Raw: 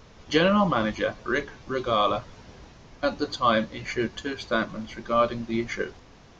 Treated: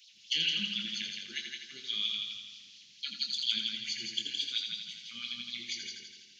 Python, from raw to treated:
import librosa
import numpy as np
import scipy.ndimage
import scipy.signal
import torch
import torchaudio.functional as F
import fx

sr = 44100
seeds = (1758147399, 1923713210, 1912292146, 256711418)

y = scipy.signal.sosfilt(scipy.signal.ellip(3, 1.0, 80, [190.0, 2900.0], 'bandstop', fs=sr, output='sos'), x)
y = fx.filter_lfo_highpass(y, sr, shape='sine', hz=4.4, low_hz=440.0, high_hz=4600.0, q=3.6)
y = fx.doubler(y, sr, ms=24.0, db=-8.0)
y = fx.echo_heads(y, sr, ms=83, heads='first and second', feedback_pct=51, wet_db=-6.5)
y = F.gain(torch.from_numpy(y), -2.0).numpy()